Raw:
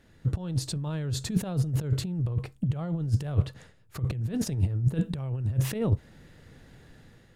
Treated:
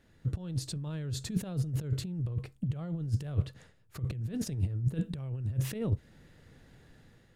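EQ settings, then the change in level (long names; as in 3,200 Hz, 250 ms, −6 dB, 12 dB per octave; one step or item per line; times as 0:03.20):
dynamic equaliser 870 Hz, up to −5 dB, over −50 dBFS, Q 1.3
−5.0 dB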